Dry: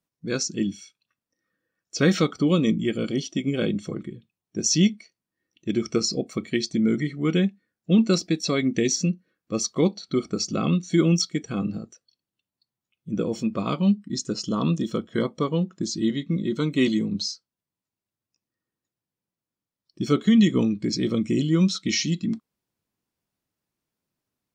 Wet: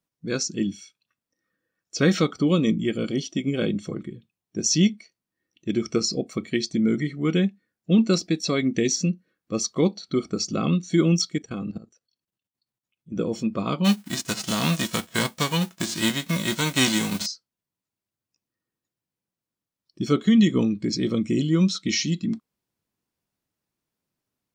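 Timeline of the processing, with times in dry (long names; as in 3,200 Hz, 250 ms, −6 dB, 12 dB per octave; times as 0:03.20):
0:11.38–0:13.16: output level in coarse steps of 15 dB
0:13.84–0:17.25: spectral envelope flattened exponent 0.3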